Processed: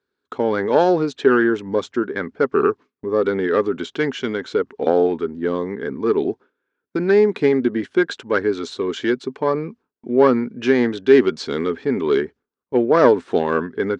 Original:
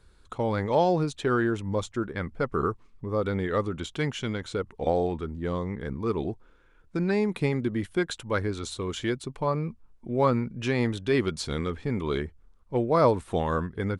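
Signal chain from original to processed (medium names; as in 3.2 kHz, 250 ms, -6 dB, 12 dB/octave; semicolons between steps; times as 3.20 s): self-modulated delay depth 0.086 ms; cabinet simulation 230–6100 Hz, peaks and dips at 260 Hz +8 dB, 410 Hz +9 dB, 1.6 kHz +6 dB; gate with hold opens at -44 dBFS; trim +5 dB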